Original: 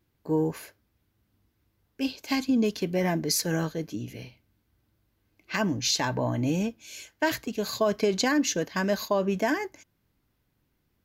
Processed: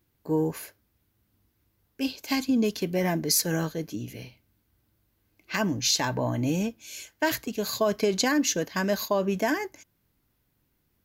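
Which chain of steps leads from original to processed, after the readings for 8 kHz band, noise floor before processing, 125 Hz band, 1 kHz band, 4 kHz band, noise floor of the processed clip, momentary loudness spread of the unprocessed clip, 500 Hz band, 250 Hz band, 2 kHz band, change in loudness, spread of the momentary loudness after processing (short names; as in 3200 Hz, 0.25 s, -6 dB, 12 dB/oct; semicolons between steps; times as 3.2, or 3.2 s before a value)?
+3.0 dB, -74 dBFS, 0.0 dB, 0.0 dB, +1.5 dB, -73 dBFS, 11 LU, 0.0 dB, 0.0 dB, +0.5 dB, +0.5 dB, 13 LU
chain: high shelf 8800 Hz +8.5 dB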